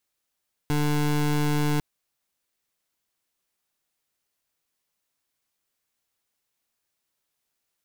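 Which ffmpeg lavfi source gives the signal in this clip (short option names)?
-f lavfi -i "aevalsrc='0.0708*(2*lt(mod(148*t,1),0.24)-1)':d=1.1:s=44100"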